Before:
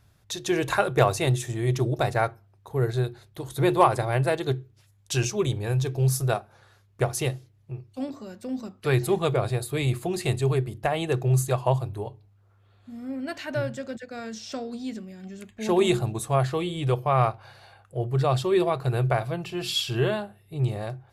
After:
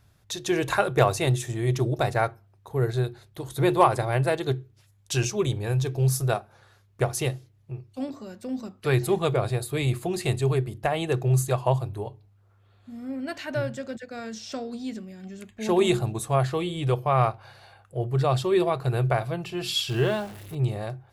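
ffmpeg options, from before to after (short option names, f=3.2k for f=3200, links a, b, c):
-filter_complex "[0:a]asettb=1/sr,asplit=3[a][b][c];[a]atrim=end=19.894[d];[b]atrim=start=19.89:end=20.55,asetpts=PTS-STARTPTS,afade=t=in:d=0.004:c=qsin,afade=t=out:st=0.656:d=0.004:c=qsin,aeval=exprs='val(0)+0.5*0.0126*sgn(val(0))':c=same[e];[c]atrim=start=20.546[f];[d][e]acrossfade=d=0.004:c1=hsin:c2=qsin[g];[g][f]acrossfade=d=0.004:c1=qsin:c2=hsin"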